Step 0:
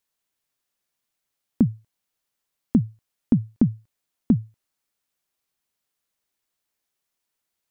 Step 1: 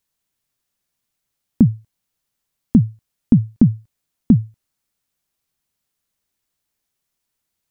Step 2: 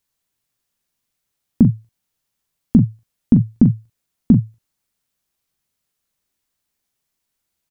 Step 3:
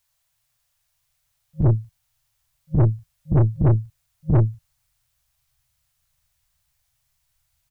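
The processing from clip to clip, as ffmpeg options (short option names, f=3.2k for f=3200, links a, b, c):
-af "bass=f=250:g=8,treble=f=4k:g=2,volume=1.5dB"
-af "aecho=1:1:17|42:0.2|0.398"
-af "afftfilt=real='re*(1-between(b*sr/4096,160,540))':imag='im*(1-between(b*sr/4096,160,540))':win_size=4096:overlap=0.75,asubboost=boost=5:cutoff=150,aeval=exprs='(tanh(8.91*val(0)+0.35)-tanh(0.35))/8.91':c=same,volume=6dB"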